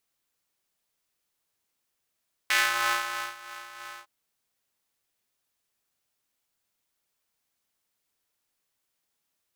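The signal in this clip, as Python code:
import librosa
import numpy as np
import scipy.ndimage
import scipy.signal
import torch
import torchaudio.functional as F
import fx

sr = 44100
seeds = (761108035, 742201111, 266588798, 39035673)

y = fx.sub_patch_tremolo(sr, seeds[0], note=46, wave='square', wave2='saw', interval_st=0, detune_cents=28, level2_db=-9.0, sub_db=-15.0, noise_db=-26.5, kind='highpass', cutoff_hz=980.0, q=2.1, env_oct=1.0, env_decay_s=0.27, env_sustain_pct=40, attack_ms=1.7, decay_s=0.85, sustain_db=-20.5, release_s=0.07, note_s=1.49, lfo_hz=3.1, tremolo_db=5)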